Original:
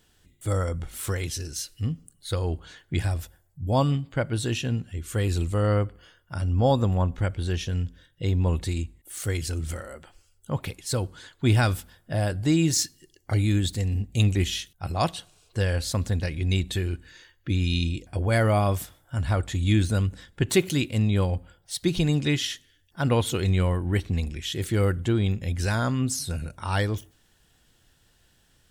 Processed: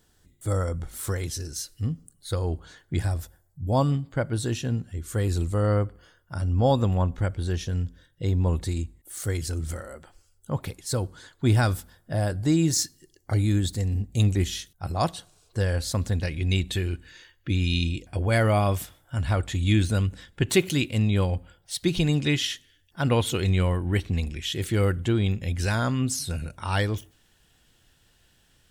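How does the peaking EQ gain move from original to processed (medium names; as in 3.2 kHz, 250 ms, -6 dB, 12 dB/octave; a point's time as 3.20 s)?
peaking EQ 2.7 kHz 0.8 oct
6.35 s -7.5 dB
6.90 s +3.5 dB
7.27 s -6.5 dB
15.65 s -6.5 dB
16.38 s +2.5 dB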